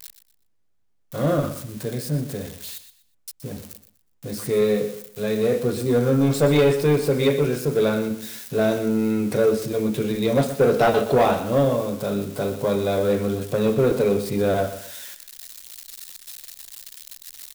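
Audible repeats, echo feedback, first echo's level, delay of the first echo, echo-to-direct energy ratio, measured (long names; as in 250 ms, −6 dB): 3, 27%, −12.0 dB, 122 ms, −11.5 dB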